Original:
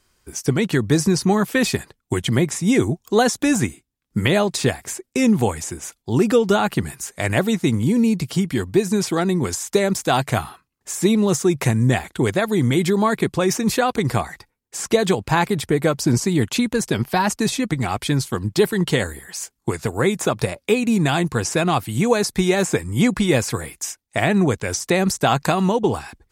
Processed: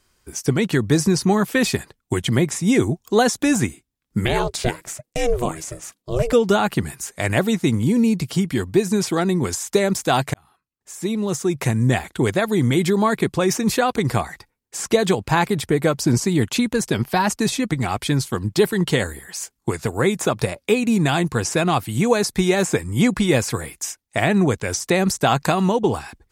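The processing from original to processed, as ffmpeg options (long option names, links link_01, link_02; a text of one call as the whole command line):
ffmpeg -i in.wav -filter_complex "[0:a]asettb=1/sr,asplit=3[link_01][link_02][link_03];[link_01]atrim=end=4.254[link_04];[link_02]atrim=start=4.25:end=6.33,asetpts=PTS-STARTPTS,afade=type=in:duration=0.004:curve=qsin,afade=type=out:start_time=2.076:duration=0.004:curve=qsin,aeval=exprs='val(0)*sin(2*PI*240*n/s)':channel_layout=same[link_05];[link_03]atrim=start=6.326[link_06];[link_04][link_05]acrossfade=duration=0.004:curve1=hsin:curve2=qsin[link_07];[link_07][link_06]acrossfade=duration=0.004:curve1=qsin:curve2=hsin,asplit=2[link_08][link_09];[link_08]atrim=end=10.34,asetpts=PTS-STARTPTS,afade=type=out:start_time=10.336:duration=0.004:curve=hsin[link_10];[link_09]atrim=start=10.34,asetpts=PTS-STARTPTS,afade=type=in:duration=1.66[link_11];[link_10][link_11]concat=n=2:v=0:a=1" out.wav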